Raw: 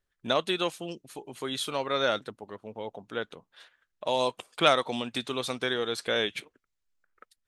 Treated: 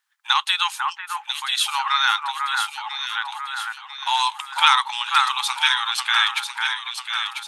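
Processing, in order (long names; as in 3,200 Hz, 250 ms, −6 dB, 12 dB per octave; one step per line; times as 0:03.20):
linear-phase brick-wall high-pass 780 Hz
delay that swaps between a low-pass and a high-pass 497 ms, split 1,900 Hz, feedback 70%, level −3 dB
boost into a limiter +12 dB
level −1 dB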